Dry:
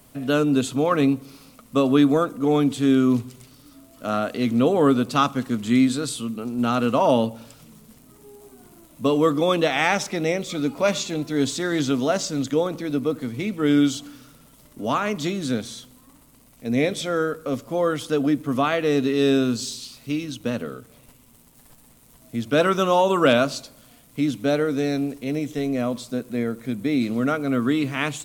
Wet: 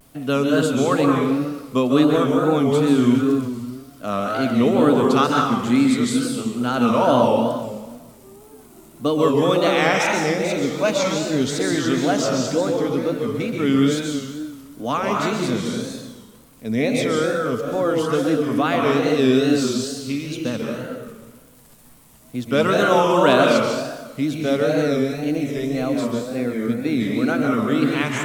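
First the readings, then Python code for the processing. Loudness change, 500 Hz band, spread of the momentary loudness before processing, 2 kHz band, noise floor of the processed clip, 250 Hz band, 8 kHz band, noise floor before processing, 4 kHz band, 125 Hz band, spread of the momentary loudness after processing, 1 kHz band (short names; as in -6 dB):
+2.5 dB, +3.5 dB, 10 LU, +3.5 dB, -47 dBFS, +2.5 dB, +2.5 dB, -53 dBFS, +2.5 dB, +3.0 dB, 11 LU, +3.5 dB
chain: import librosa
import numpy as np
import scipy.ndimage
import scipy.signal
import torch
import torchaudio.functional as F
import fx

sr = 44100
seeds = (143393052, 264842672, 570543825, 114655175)

y = fx.rev_plate(x, sr, seeds[0], rt60_s=1.4, hf_ratio=0.75, predelay_ms=120, drr_db=-0.5)
y = fx.wow_flutter(y, sr, seeds[1], rate_hz=2.1, depth_cents=110.0)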